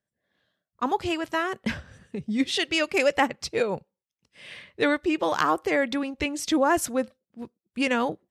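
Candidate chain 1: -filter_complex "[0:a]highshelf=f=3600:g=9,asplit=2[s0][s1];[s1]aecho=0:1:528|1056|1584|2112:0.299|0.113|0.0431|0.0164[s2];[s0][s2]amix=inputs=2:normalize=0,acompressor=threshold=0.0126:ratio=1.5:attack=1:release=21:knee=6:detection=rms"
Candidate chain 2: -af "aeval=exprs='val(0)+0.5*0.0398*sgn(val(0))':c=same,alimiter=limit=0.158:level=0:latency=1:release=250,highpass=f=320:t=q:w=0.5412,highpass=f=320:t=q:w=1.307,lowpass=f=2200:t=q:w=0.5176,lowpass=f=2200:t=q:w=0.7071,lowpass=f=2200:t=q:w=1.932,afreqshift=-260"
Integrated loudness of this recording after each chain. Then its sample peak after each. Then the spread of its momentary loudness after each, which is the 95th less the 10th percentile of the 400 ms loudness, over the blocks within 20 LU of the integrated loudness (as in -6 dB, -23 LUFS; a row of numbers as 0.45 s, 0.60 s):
-31.5 LUFS, -31.0 LUFS; -14.5 dBFS, -14.0 dBFS; 10 LU, 11 LU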